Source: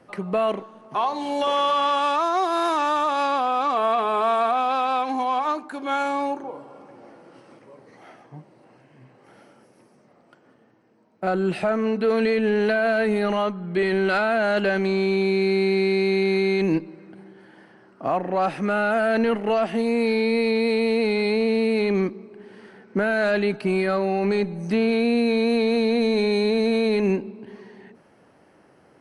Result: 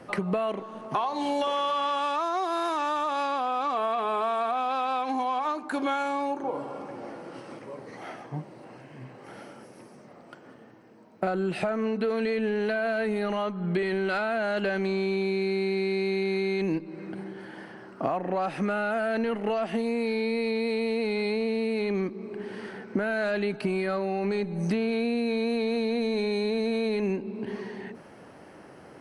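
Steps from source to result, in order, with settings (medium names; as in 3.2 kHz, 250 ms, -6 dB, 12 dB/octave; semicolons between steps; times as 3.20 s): compression 8:1, threshold -32 dBFS, peak gain reduction 14.5 dB; trim +7 dB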